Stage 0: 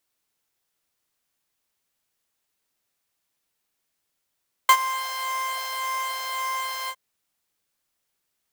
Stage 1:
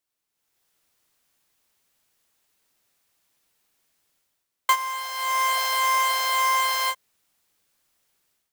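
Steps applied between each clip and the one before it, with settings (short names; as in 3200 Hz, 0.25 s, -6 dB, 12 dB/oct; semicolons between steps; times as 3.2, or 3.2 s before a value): AGC gain up to 13.5 dB; gain -6.5 dB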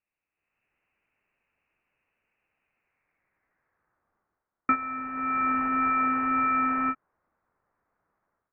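high-pass sweep 780 Hz -> 2200 Hz, 2.58–4.05; inverted band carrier 3400 Hz; gain -2.5 dB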